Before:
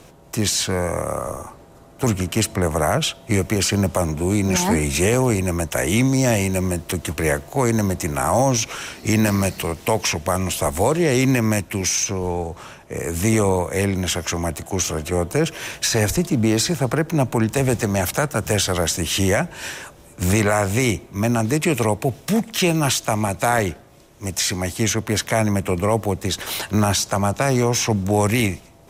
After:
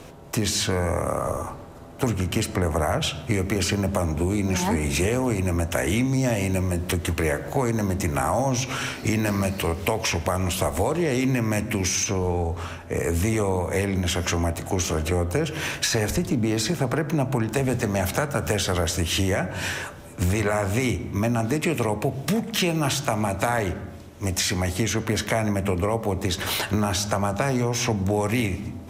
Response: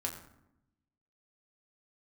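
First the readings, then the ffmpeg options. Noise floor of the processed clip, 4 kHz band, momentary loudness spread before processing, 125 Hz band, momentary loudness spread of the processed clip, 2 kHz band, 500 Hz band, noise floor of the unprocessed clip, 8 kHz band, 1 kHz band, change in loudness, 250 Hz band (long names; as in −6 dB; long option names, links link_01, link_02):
−40 dBFS, −3.5 dB, 7 LU, −3.0 dB, 4 LU, −3.0 dB, −4.0 dB, −46 dBFS, −6.0 dB, −4.0 dB, −4.0 dB, −4.0 dB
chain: -filter_complex "[0:a]asplit=2[link_01][link_02];[1:a]atrim=start_sample=2205,lowpass=5200[link_03];[link_02][link_03]afir=irnorm=-1:irlink=0,volume=-6dB[link_04];[link_01][link_04]amix=inputs=2:normalize=0,acompressor=threshold=-21dB:ratio=4"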